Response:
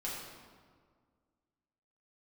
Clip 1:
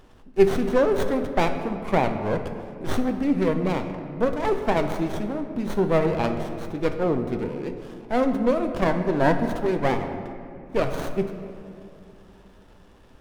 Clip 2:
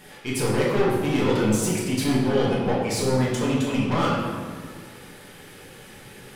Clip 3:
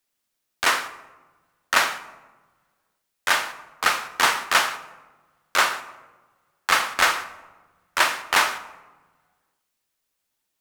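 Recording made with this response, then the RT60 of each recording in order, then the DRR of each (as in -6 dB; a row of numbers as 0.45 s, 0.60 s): 2; 2.8 s, 1.8 s, 1.3 s; 5.5 dB, -6.5 dB, 10.0 dB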